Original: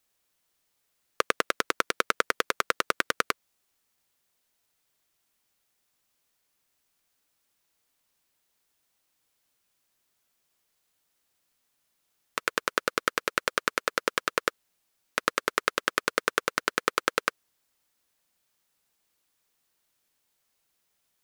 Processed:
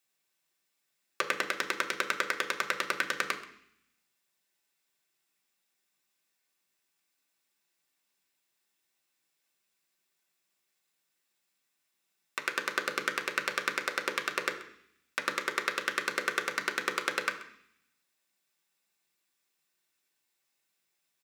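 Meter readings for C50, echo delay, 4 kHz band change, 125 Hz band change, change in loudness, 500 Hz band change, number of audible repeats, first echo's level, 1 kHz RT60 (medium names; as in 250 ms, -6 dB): 11.0 dB, 132 ms, -3.0 dB, -6.5 dB, -3.0 dB, -6.0 dB, 1, -18.5 dB, 0.65 s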